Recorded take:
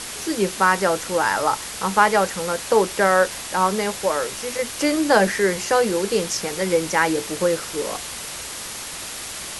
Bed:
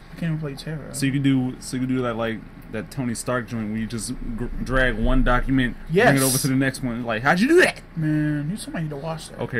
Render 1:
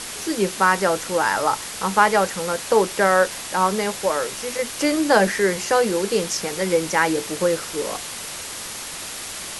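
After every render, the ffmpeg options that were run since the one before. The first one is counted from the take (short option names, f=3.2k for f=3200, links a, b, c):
-af "bandreject=f=60:t=h:w=4,bandreject=f=120:t=h:w=4"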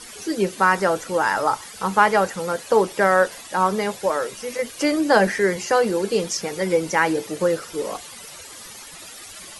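-af "afftdn=nr=13:nf=-33"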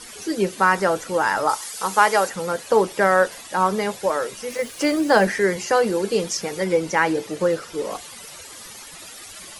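-filter_complex "[0:a]asettb=1/sr,asplit=3[a][b][c];[a]atrim=end=1.494[d];[b]atrim=start=1.49:end=2.29,asetpts=PTS-STARTPTS,afade=t=in:d=0.004:c=qsin,afade=t=out:st=0.796:d=0.004:c=qsin,bass=f=250:g=-12,treble=f=4k:g=8[e];[c]atrim=start=2.286[f];[d][e]acrossfade=d=0.004:c1=hsin:c2=qsin[g];[g][f]acrossfade=d=0.004:c1=qsin:c2=hsin,asettb=1/sr,asplit=3[h][i][j];[h]atrim=end=4.504[k];[i]atrim=start=4.5:end=5.25,asetpts=PTS-STARTPTS,afade=t=in:d=0.004:c=qsin,afade=t=out:st=0.746:d=0.004:c=qsin,acrusher=bits=6:mix=0:aa=0.5[l];[j]atrim=start=5.246[m];[k][l]acrossfade=d=0.004:c1=hsin:c2=qsin[n];[n][m]acrossfade=d=0.004:c1=qsin:c2=hsin,asettb=1/sr,asplit=3[o][p][q];[o]atrim=end=6.644[r];[p]atrim=start=6.64:end=7.91,asetpts=PTS-STARTPTS,afade=t=in:d=0.004:c=qsin,afade=t=out:st=1.266:d=0.004:c=qsin,highshelf=f=10k:g=-8.5[s];[q]atrim=start=7.906[t];[r][s]acrossfade=d=0.004:c1=hsin:c2=qsin[u];[u][t]acrossfade=d=0.004:c1=qsin:c2=hsin"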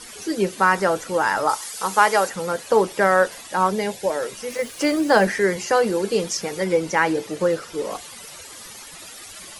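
-filter_complex "[0:a]asettb=1/sr,asplit=3[a][b][c];[a]atrim=end=3.704[d];[b]atrim=start=3.7:end=4.23,asetpts=PTS-STARTPTS,afade=t=in:d=0.004:c=qsin,afade=t=out:st=0.526:d=0.004:c=qsin,equalizer=f=1.2k:w=3.6:g=-13.5[e];[c]atrim=start=4.226[f];[d][e]acrossfade=d=0.004:c1=hsin:c2=qsin[g];[g][f]acrossfade=d=0.004:c1=qsin:c2=hsin"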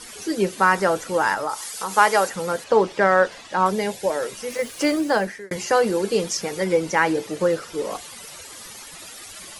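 -filter_complex "[0:a]asettb=1/sr,asplit=3[a][b][c];[a]atrim=end=1.344[d];[b]atrim=start=1.34:end=1.92,asetpts=PTS-STARTPTS,afade=t=in:d=0.004:c=qsin,afade=t=out:st=0.576:d=0.004:c=qsin,acompressor=threshold=-24dB:ratio=2.5:attack=3.2:release=140:knee=1:detection=peak[e];[c]atrim=start=1.916[f];[d][e]acrossfade=d=0.004:c1=hsin:c2=qsin[g];[g][f]acrossfade=d=0.004:c1=qsin:c2=hsin,asettb=1/sr,asplit=3[h][i][j];[h]atrim=end=2.644[k];[i]atrim=start=2.64:end=3.66,asetpts=PTS-STARTPTS,afade=t=in:d=0.004:c=qsin,afade=t=out:st=1.016:d=0.004:c=qsin,lowpass=5.3k[l];[j]atrim=start=3.656[m];[k][l]acrossfade=d=0.004:c1=hsin:c2=qsin[n];[n][m]acrossfade=d=0.004:c1=qsin:c2=hsin,asplit=2[o][p];[o]atrim=end=5.51,asetpts=PTS-STARTPTS,afade=t=out:st=4.9:d=0.61[q];[p]atrim=start=5.51,asetpts=PTS-STARTPTS,afade=t=in:d=0.004:c=hsin[r];[q][r]concat=n=2:v=0:a=1"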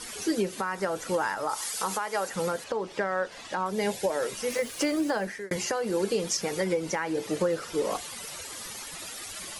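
-af "acompressor=threshold=-21dB:ratio=6,alimiter=limit=-17dB:level=0:latency=1:release=371"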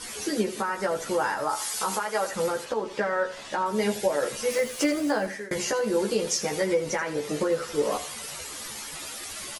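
-filter_complex "[0:a]asplit=2[a][b];[b]adelay=14,volume=-2.5dB[c];[a][c]amix=inputs=2:normalize=0,aecho=1:1:83|166|249:0.2|0.0619|0.0192"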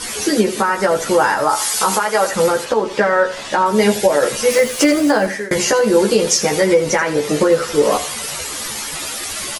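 -af "volume=12dB,alimiter=limit=-3dB:level=0:latency=1"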